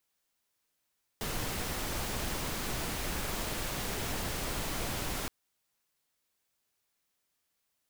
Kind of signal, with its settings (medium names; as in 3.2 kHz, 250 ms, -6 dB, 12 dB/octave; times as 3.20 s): noise pink, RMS -35 dBFS 4.07 s